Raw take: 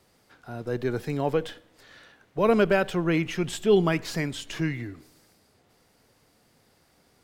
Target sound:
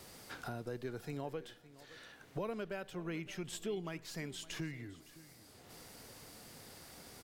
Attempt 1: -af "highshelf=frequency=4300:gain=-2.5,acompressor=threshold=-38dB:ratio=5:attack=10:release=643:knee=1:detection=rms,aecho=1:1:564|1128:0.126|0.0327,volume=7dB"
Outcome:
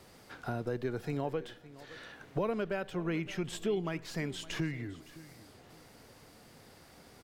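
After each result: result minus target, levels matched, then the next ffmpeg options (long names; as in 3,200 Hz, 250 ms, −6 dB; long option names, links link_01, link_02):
8,000 Hz band −8.5 dB; downward compressor: peak gain reduction −7.5 dB
-af "highshelf=frequency=4300:gain=6.5,acompressor=threshold=-38dB:ratio=5:attack=10:release=643:knee=1:detection=rms,aecho=1:1:564|1128:0.126|0.0327,volume=7dB"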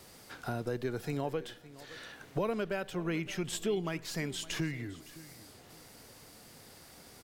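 downward compressor: peak gain reduction −7 dB
-af "highshelf=frequency=4300:gain=6.5,acompressor=threshold=-47dB:ratio=5:attack=10:release=643:knee=1:detection=rms,aecho=1:1:564|1128:0.126|0.0327,volume=7dB"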